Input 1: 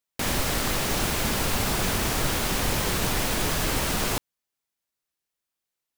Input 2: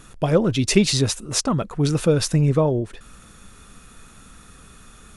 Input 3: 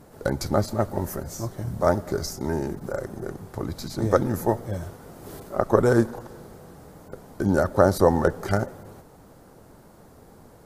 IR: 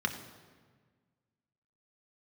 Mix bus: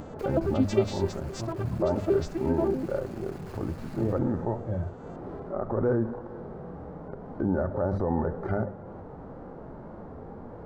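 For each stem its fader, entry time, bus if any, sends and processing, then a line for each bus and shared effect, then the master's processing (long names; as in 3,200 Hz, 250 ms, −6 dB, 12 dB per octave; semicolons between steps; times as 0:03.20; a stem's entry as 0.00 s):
−17.0 dB, 0.00 s, bus A, send −17 dB, flanger 1.2 Hz, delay 4.4 ms, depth 4.9 ms, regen +24%; comparator with hysteresis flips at −31.5 dBFS
−9.0 dB, 0.00 s, no bus, no send, vocoder with an arpeggio as carrier major triad, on C4, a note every 91 ms
−1.5 dB, 0.00 s, bus A, no send, low-pass filter 1,200 Hz 12 dB per octave; mains-hum notches 50/100/150/200 Hz; harmonic and percussive parts rebalanced harmonic +9 dB
bus A: 0.0 dB, flanger 1.9 Hz, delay 3.4 ms, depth 1.9 ms, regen −80%; brickwall limiter −17 dBFS, peak gain reduction 11 dB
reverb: on, RT60 1.5 s, pre-delay 3 ms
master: upward compression, threshold −32 dBFS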